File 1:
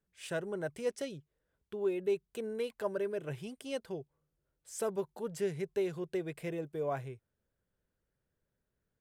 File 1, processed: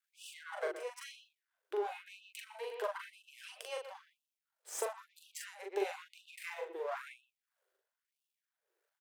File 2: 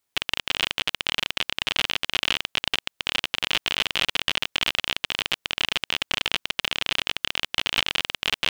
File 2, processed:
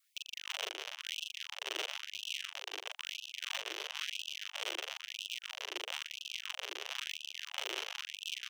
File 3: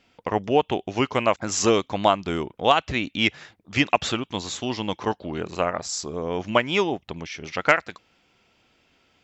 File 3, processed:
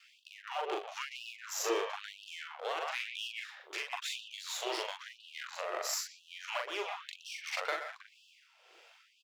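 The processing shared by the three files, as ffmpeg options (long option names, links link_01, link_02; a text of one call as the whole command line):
ffmpeg -i in.wav -filter_complex "[0:a]aeval=exprs='if(lt(val(0),0),0.251*val(0),val(0))':channel_layout=same,acrossover=split=510[link_01][link_02];[link_01]acompressor=threshold=-37dB:ratio=6[link_03];[link_03][link_02]amix=inputs=2:normalize=0,asplit=2[link_04][link_05];[link_05]adelay=120,highpass=300,lowpass=3400,asoftclip=type=hard:threshold=-15dB,volume=-9dB[link_06];[link_04][link_06]amix=inputs=2:normalize=0,acrossover=split=320[link_07][link_08];[link_08]acompressor=threshold=-40dB:ratio=3[link_09];[link_07][link_09]amix=inputs=2:normalize=0,tremolo=f=1.7:d=0.59,highpass=frequency=99:width=0.5412,highpass=frequency=99:width=1.3066,asoftclip=type=hard:threshold=-26dB,alimiter=level_in=6.5dB:limit=-24dB:level=0:latency=1:release=161,volume=-6.5dB,bass=frequency=250:gain=6,treble=frequency=4000:gain=-2,asplit=2[link_10][link_11];[link_11]adelay=41,volume=-3dB[link_12];[link_10][link_12]amix=inputs=2:normalize=0,adynamicequalizer=threshold=0.00141:dfrequency=780:dqfactor=2.4:tfrequency=780:tqfactor=2.4:attack=5:release=100:ratio=0.375:range=1.5:mode=cutabove:tftype=bell,afftfilt=real='re*gte(b*sr/1024,330*pow(2600/330,0.5+0.5*sin(2*PI*1*pts/sr)))':imag='im*gte(b*sr/1024,330*pow(2600/330,0.5+0.5*sin(2*PI*1*pts/sr)))':win_size=1024:overlap=0.75,volume=7dB" out.wav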